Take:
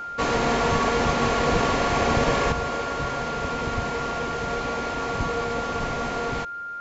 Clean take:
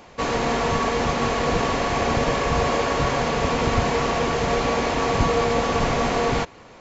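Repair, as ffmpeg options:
-af "bandreject=f=1400:w=30,asetnsamples=n=441:p=0,asendcmd='2.52 volume volume 7dB',volume=1"

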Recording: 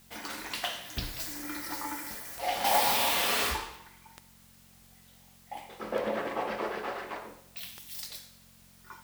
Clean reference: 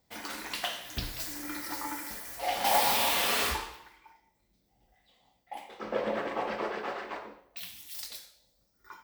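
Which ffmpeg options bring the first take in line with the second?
-af "adeclick=t=4,bandreject=f=45:t=h:w=4,bandreject=f=90:t=h:w=4,bandreject=f=135:t=h:w=4,bandreject=f=180:t=h:w=4,bandreject=f=225:t=h:w=4,agate=range=0.0891:threshold=0.00316"

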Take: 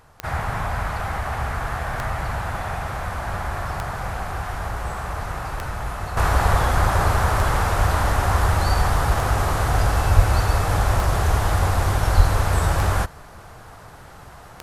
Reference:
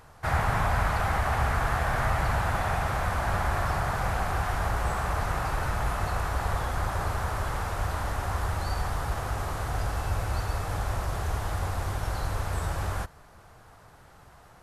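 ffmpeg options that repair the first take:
-filter_complex "[0:a]adeclick=t=4,asplit=3[s0][s1][s2];[s0]afade=t=out:st=10.15:d=0.02[s3];[s1]highpass=f=140:w=0.5412,highpass=f=140:w=1.3066,afade=t=in:st=10.15:d=0.02,afade=t=out:st=10.27:d=0.02[s4];[s2]afade=t=in:st=10.27:d=0.02[s5];[s3][s4][s5]amix=inputs=3:normalize=0,asplit=3[s6][s7][s8];[s6]afade=t=out:st=12.16:d=0.02[s9];[s7]highpass=f=140:w=0.5412,highpass=f=140:w=1.3066,afade=t=in:st=12.16:d=0.02,afade=t=out:st=12.28:d=0.02[s10];[s8]afade=t=in:st=12.28:d=0.02[s11];[s9][s10][s11]amix=inputs=3:normalize=0,asetnsamples=n=441:p=0,asendcmd='6.17 volume volume -10.5dB',volume=1"

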